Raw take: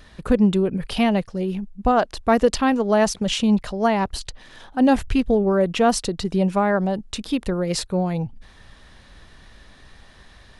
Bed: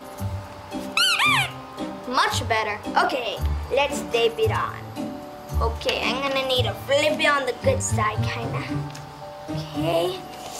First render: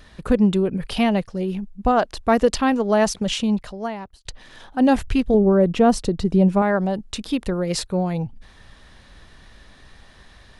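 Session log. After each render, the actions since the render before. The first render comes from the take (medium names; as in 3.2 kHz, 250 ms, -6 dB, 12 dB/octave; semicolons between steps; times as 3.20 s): 3.22–4.25 s: fade out; 5.34–6.62 s: tilt shelf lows +5.5 dB, about 720 Hz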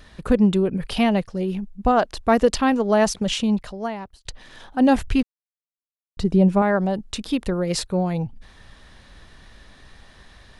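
5.23–6.17 s: mute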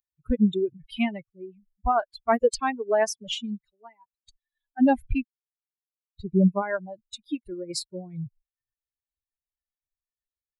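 expander on every frequency bin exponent 3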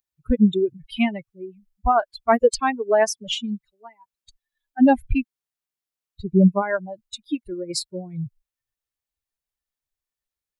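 trim +4.5 dB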